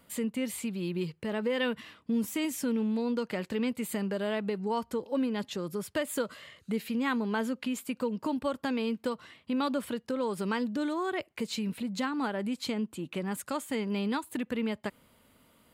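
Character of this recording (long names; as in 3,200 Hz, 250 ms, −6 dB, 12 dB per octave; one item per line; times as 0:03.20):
background noise floor −66 dBFS
spectral slope −5.0 dB per octave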